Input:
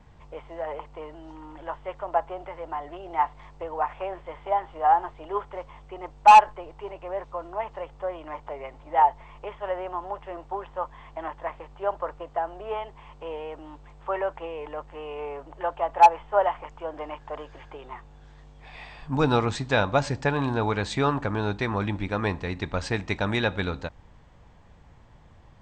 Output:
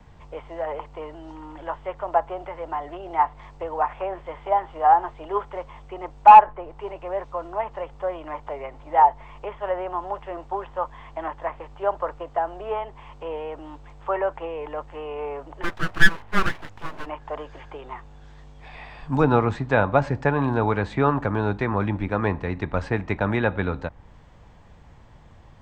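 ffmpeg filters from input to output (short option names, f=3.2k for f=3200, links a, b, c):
-filter_complex "[0:a]acrossover=split=170|870|2300[a][b][c][d];[d]acompressor=threshold=-56dB:ratio=6[e];[a][b][c][e]amix=inputs=4:normalize=0,asplit=3[f][g][h];[f]afade=t=out:st=15.62:d=0.02[i];[g]aeval=exprs='abs(val(0))':c=same,afade=t=in:st=15.62:d=0.02,afade=t=out:st=17.05:d=0.02[j];[h]afade=t=in:st=17.05:d=0.02[k];[i][j][k]amix=inputs=3:normalize=0,volume=3.5dB"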